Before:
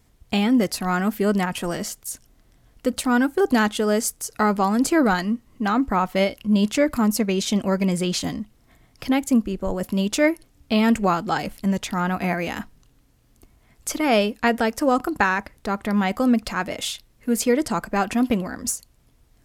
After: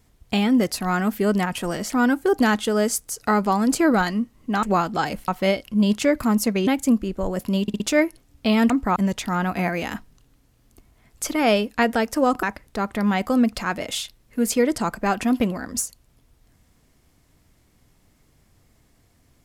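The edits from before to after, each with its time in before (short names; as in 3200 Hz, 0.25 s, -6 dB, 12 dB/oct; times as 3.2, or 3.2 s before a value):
1.9–3.02 cut
5.75–6.01 swap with 10.96–11.61
7.4–9.11 cut
10.06 stutter 0.06 s, 4 plays
15.08–15.33 cut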